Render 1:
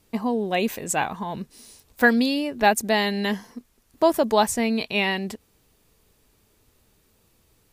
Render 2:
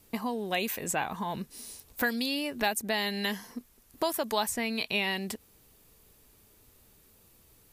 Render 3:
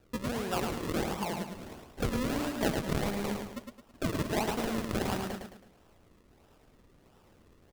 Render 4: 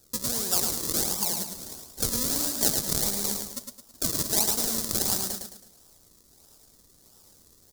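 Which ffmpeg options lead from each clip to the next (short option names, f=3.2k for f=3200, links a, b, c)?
-filter_complex "[0:a]equalizer=f=13k:w=0.88:g=7.5,acrossover=split=1000|3000[a][b][c];[a]acompressor=threshold=-33dB:ratio=4[d];[b]acompressor=threshold=-33dB:ratio=4[e];[c]acompressor=threshold=-33dB:ratio=4[f];[d][e][f]amix=inputs=3:normalize=0"
-filter_complex "[0:a]acrusher=samples=40:mix=1:aa=0.000001:lfo=1:lforange=40:lforate=1.5,asplit=2[a][b];[b]aecho=0:1:108|216|324|432|540:0.562|0.219|0.0855|0.0334|0.013[c];[a][c]amix=inputs=2:normalize=0,volume=-2dB"
-af "aexciter=amount=10.2:drive=5.5:freq=4k,volume=-3dB"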